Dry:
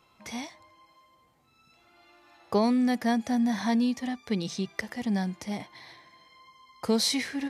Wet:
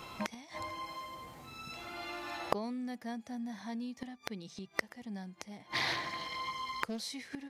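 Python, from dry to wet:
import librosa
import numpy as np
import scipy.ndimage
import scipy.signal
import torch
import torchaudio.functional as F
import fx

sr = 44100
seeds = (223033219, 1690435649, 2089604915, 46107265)

y = fx.gate_flip(x, sr, shuts_db=-28.0, range_db=-31)
y = 10.0 ** (-28.5 / 20.0) * np.tanh(y / 10.0 ** (-28.5 / 20.0))
y = fx.doppler_dist(y, sr, depth_ms=0.39, at=(5.56, 7.03))
y = y * librosa.db_to_amplitude(16.0)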